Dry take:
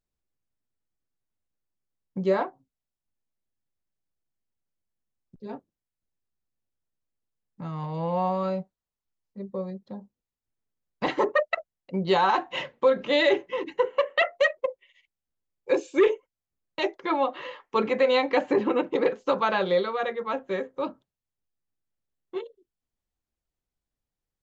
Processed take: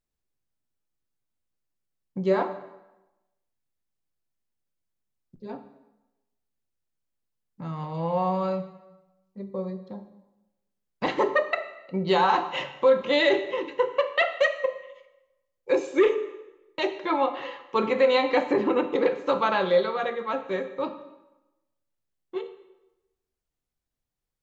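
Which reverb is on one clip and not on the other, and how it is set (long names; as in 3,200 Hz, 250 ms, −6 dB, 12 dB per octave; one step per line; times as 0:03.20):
dense smooth reverb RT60 0.99 s, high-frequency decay 0.85×, DRR 8 dB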